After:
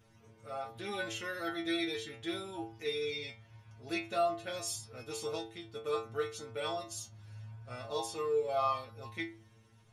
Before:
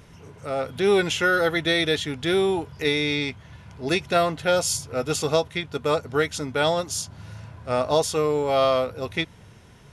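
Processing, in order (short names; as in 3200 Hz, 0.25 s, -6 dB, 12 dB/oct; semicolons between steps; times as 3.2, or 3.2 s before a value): metallic resonator 110 Hz, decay 0.43 s, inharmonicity 0.002; gain -2.5 dB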